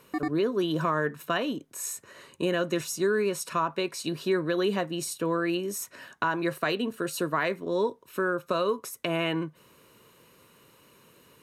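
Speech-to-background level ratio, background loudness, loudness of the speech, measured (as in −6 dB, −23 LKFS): 5.5 dB, −34.5 LKFS, −29.0 LKFS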